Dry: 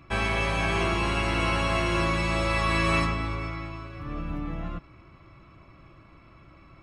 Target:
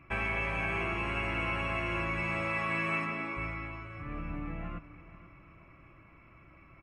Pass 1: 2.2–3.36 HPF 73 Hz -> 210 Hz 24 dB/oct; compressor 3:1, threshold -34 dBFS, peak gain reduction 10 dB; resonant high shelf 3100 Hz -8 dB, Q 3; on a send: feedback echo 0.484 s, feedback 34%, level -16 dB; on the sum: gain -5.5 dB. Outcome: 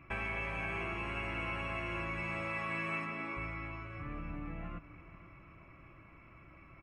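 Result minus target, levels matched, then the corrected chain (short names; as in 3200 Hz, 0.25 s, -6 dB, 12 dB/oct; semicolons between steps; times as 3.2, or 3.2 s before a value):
compressor: peak gain reduction +5.5 dB
2.2–3.36 HPF 73 Hz -> 210 Hz 24 dB/oct; compressor 3:1, threshold -26 dBFS, peak gain reduction 5 dB; resonant high shelf 3100 Hz -8 dB, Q 3; on a send: feedback echo 0.484 s, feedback 34%, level -16 dB; on the sum: gain -5.5 dB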